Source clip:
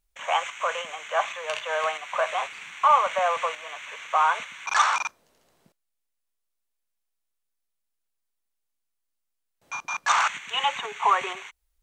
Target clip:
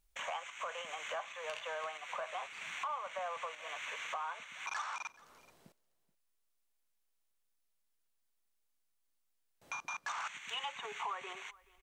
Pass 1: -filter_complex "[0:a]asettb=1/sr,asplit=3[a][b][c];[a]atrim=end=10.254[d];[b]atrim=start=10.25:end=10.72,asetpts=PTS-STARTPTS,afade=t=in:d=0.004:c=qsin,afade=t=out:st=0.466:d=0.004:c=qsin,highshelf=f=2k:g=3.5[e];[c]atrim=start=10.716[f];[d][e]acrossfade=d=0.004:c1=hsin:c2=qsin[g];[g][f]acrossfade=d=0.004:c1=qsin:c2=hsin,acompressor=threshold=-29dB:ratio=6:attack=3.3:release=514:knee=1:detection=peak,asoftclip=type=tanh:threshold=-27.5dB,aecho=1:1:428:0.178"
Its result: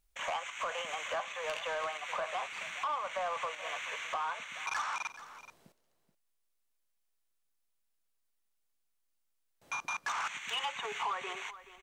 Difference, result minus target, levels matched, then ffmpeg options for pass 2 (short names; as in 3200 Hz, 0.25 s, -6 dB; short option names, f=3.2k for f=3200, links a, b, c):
compressor: peak gain reduction -6 dB; echo-to-direct +7.5 dB
-filter_complex "[0:a]asettb=1/sr,asplit=3[a][b][c];[a]atrim=end=10.254[d];[b]atrim=start=10.25:end=10.72,asetpts=PTS-STARTPTS,afade=t=in:d=0.004:c=qsin,afade=t=out:st=0.466:d=0.004:c=qsin,highshelf=f=2k:g=3.5[e];[c]atrim=start=10.716[f];[d][e]acrossfade=d=0.004:c1=hsin:c2=qsin[g];[g][f]acrossfade=d=0.004:c1=qsin:c2=hsin,acompressor=threshold=-36dB:ratio=6:attack=3.3:release=514:knee=1:detection=peak,asoftclip=type=tanh:threshold=-27.5dB,aecho=1:1:428:0.075"